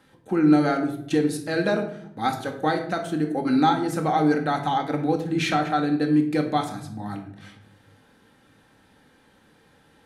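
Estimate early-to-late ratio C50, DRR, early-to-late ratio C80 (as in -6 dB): 8.5 dB, 3.0 dB, 12.0 dB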